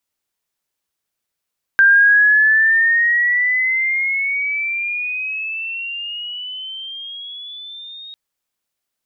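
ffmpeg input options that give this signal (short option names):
-f lavfi -i "aevalsrc='pow(10,(-7-25.5*t/6.35)/20)*sin(2*PI*1580*6.35/(15*log(2)/12)*(exp(15*log(2)/12*t/6.35)-1))':d=6.35:s=44100"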